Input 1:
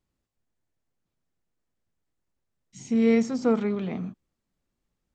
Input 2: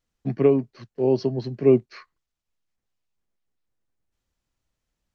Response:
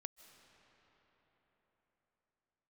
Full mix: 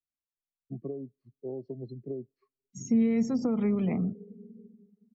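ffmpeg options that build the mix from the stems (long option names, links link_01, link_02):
-filter_complex "[0:a]alimiter=limit=-17.5dB:level=0:latency=1:release=60,volume=2.5dB,asplit=2[link_01][link_02];[link_02]volume=-6.5dB[link_03];[1:a]acompressor=threshold=-22dB:ratio=12,adelay=450,volume=-12dB,asplit=2[link_04][link_05];[link_05]volume=-10dB[link_06];[2:a]atrim=start_sample=2205[link_07];[link_03][link_06]amix=inputs=2:normalize=0[link_08];[link_08][link_07]afir=irnorm=-1:irlink=0[link_09];[link_01][link_04][link_09]amix=inputs=3:normalize=0,afftdn=noise_reduction=32:noise_floor=-40,bandreject=frequency=1500:width=5.4,acrossover=split=220[link_10][link_11];[link_11]acompressor=threshold=-31dB:ratio=6[link_12];[link_10][link_12]amix=inputs=2:normalize=0"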